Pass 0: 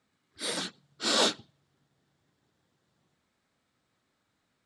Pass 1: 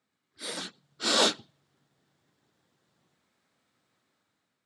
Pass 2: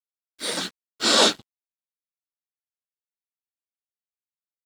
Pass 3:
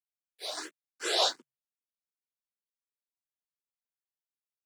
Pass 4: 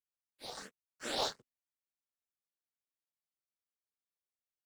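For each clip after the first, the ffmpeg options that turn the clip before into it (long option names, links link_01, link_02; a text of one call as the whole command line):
ffmpeg -i in.wav -af "highpass=78,lowshelf=frequency=100:gain=-7,dynaudnorm=framelen=320:gausssize=5:maxgain=7.5dB,volume=-5dB" out.wav
ffmpeg -i in.wav -filter_complex "[0:a]asplit=2[link_01][link_02];[link_02]alimiter=limit=-21.5dB:level=0:latency=1:release=289,volume=-1dB[link_03];[link_01][link_03]amix=inputs=2:normalize=0,aeval=exprs='sgn(val(0))*max(abs(val(0))-0.00447,0)':channel_layout=same,volume=4dB" out.wav
ffmpeg -i in.wav -filter_complex "[0:a]afreqshift=130,asplit=2[link_01][link_02];[link_02]afreqshift=2.7[link_03];[link_01][link_03]amix=inputs=2:normalize=1,volume=-7.5dB" out.wav
ffmpeg -i in.wav -filter_complex "[0:a]aeval=exprs='val(0)*sin(2*PI*120*n/s)':channel_layout=same,asplit=2[link_01][link_02];[link_02]acrusher=samples=10:mix=1:aa=0.000001,volume=-9.5dB[link_03];[link_01][link_03]amix=inputs=2:normalize=0,volume=-6.5dB" out.wav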